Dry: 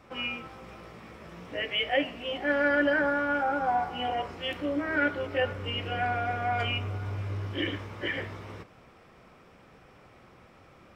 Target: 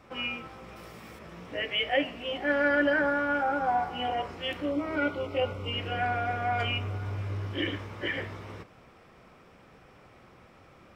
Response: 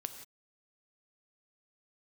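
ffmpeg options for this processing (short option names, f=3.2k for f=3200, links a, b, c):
-filter_complex "[0:a]asettb=1/sr,asplit=3[a][b][c];[a]atrim=end=0.764[d];[b]atrim=start=0.76:end=1.19,asetpts=PTS-STARTPTS,afade=t=in:d=0.004:c=qsin,afade=t=out:st=0.426:d=0.004:c=qsin,aemphasis=mode=production:type=50kf[e];[c]atrim=start=1.186[f];[d][e]acrossfade=d=0.004:c1=hsin:c2=qsin[g];[g][f]acrossfade=d=0.004:c1=qsin:c2=hsin,asettb=1/sr,asplit=3[h][i][j];[h]atrim=end=4.714[k];[i]atrim=start=4.71:end=5.73,asetpts=PTS-STARTPTS,afade=t=in:d=0.004:c=qsin,afade=t=out:st=1.016:d=0.004:c=qsin,asuperstop=centerf=1700:order=4:qfactor=2.8[l];[j]atrim=start=5.726[m];[k][l]acrossfade=d=0.004:c1=hsin:c2=qsin[n];[n][m]acrossfade=d=0.004:c1=qsin:c2=hsin"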